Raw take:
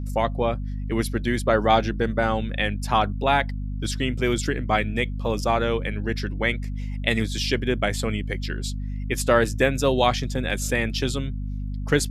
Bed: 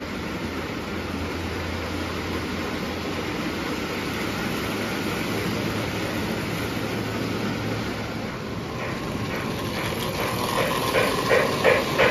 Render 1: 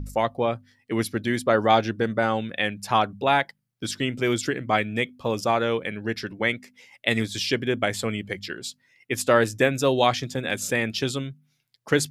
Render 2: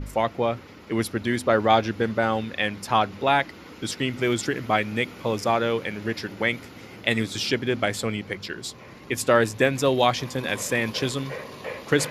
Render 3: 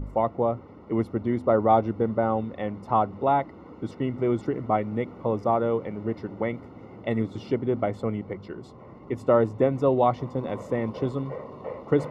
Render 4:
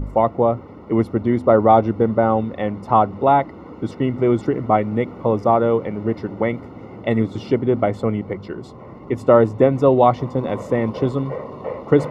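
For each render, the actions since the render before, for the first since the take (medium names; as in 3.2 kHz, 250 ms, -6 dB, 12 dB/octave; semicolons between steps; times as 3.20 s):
de-hum 50 Hz, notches 5
add bed -16 dB
Savitzky-Golay filter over 65 samples
trim +7.5 dB; peak limiter -1 dBFS, peak gain reduction 1.5 dB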